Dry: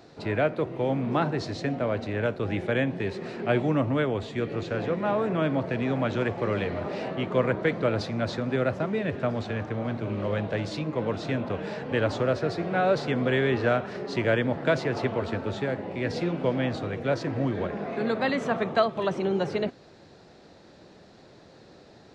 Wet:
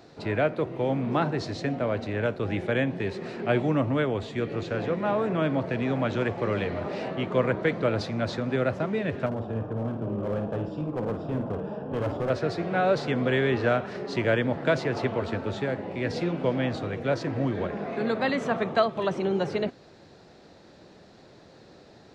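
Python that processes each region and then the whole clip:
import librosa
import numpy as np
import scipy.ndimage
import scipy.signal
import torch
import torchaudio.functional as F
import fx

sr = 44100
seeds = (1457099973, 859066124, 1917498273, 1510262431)

y = fx.chain(x, sr, fx.moving_average(points=21),
    fx.clip_hard(threshold_db=-24.5),
    fx.room_flutter(wall_m=9.1, rt60_s=0.4), at=(9.26, 12.3))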